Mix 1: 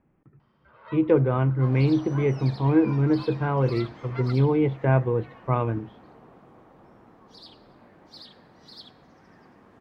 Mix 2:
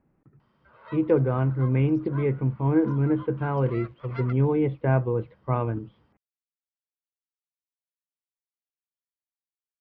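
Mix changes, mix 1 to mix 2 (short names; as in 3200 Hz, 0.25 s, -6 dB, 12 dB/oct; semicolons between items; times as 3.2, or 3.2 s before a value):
speech: add air absorption 290 m; second sound: muted; reverb: off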